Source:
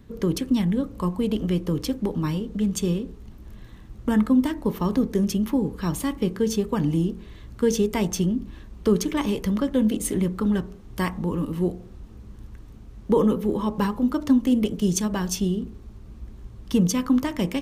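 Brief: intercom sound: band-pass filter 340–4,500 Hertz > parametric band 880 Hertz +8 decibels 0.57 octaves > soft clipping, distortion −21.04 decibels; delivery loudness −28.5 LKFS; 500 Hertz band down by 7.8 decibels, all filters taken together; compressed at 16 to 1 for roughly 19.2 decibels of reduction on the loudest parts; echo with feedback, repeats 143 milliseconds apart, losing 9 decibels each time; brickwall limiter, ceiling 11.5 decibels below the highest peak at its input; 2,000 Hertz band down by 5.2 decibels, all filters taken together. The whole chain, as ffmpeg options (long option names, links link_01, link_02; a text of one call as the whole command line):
ffmpeg -i in.wav -af "equalizer=frequency=500:width_type=o:gain=-8.5,equalizer=frequency=2000:width_type=o:gain=-6.5,acompressor=threshold=-36dB:ratio=16,alimiter=level_in=9.5dB:limit=-24dB:level=0:latency=1,volume=-9.5dB,highpass=340,lowpass=4500,equalizer=frequency=880:width_type=o:width=0.57:gain=8,aecho=1:1:143|286|429|572:0.355|0.124|0.0435|0.0152,asoftclip=threshold=-36.5dB,volume=21dB" out.wav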